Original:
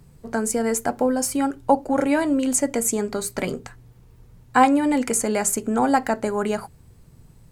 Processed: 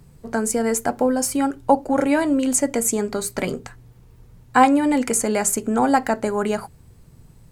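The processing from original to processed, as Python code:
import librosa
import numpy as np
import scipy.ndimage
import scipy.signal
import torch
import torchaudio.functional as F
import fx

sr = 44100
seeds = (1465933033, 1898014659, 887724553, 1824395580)

y = x * 10.0 ** (1.5 / 20.0)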